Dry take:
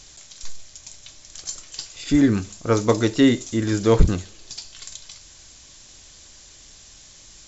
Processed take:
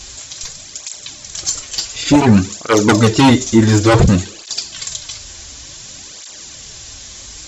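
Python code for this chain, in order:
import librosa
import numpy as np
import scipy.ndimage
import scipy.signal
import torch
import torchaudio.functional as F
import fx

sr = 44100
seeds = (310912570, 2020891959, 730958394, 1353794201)

y = fx.fold_sine(x, sr, drive_db=12, ceiling_db=-1.5)
y = fx.flanger_cancel(y, sr, hz=0.56, depth_ms=7.2)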